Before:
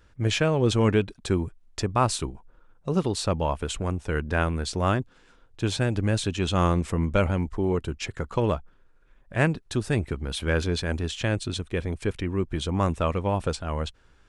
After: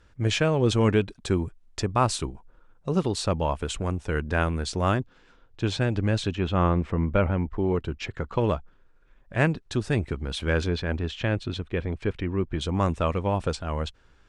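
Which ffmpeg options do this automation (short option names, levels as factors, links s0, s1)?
-af "asetnsamples=n=441:p=0,asendcmd='5 lowpass f 5500;6.35 lowpass f 2400;7.56 lowpass f 4200;8.41 lowpass f 7200;10.69 lowpass f 3500;12.61 lowpass f 7900',lowpass=9900"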